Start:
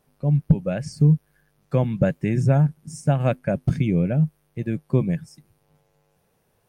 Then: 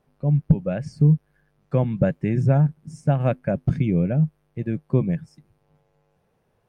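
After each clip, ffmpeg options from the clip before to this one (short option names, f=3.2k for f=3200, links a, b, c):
-af "lowpass=f=2.2k:p=1"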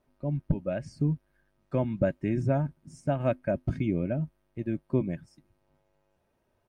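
-af "aecho=1:1:3.2:0.54,volume=-5.5dB"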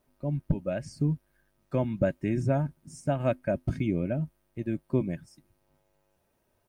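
-af "crystalizer=i=1.5:c=0"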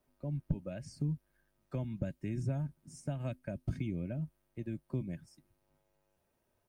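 -filter_complex "[0:a]acrossover=split=200|3000[a][b][c];[b]acompressor=threshold=-36dB:ratio=6[d];[a][d][c]amix=inputs=3:normalize=0,volume=-5.5dB"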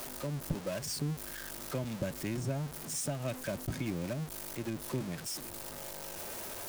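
-af "aeval=exprs='val(0)+0.5*0.00841*sgn(val(0))':c=same,bass=f=250:g=-8,treble=f=4k:g=5,volume=4.5dB"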